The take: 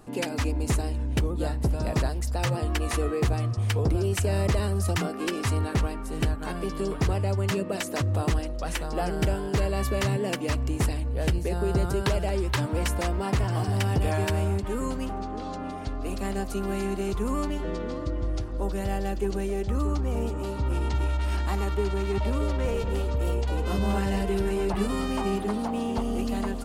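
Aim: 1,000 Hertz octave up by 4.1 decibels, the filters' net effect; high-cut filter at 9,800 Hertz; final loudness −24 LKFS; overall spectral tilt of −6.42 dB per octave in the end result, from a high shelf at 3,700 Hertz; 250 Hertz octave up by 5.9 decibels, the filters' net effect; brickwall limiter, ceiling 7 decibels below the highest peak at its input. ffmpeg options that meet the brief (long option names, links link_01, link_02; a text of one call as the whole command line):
ffmpeg -i in.wav -af "lowpass=9800,equalizer=frequency=250:width_type=o:gain=7.5,equalizer=frequency=1000:width_type=o:gain=5.5,highshelf=frequency=3700:gain=-7.5,volume=3dB,alimiter=limit=-14.5dB:level=0:latency=1" out.wav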